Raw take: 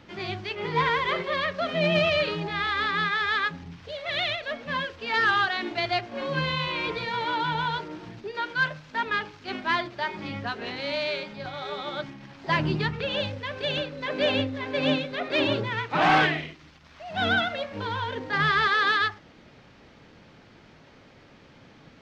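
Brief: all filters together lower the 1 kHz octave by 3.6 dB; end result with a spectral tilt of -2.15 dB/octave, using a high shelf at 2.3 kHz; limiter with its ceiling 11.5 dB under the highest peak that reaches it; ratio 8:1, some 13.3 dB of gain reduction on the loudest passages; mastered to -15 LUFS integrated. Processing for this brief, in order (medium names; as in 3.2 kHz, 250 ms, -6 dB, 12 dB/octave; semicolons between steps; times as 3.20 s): peaking EQ 1 kHz -6 dB; treble shelf 2.3 kHz +5.5 dB; compression 8:1, threshold -33 dBFS; trim +25 dB; peak limiter -7 dBFS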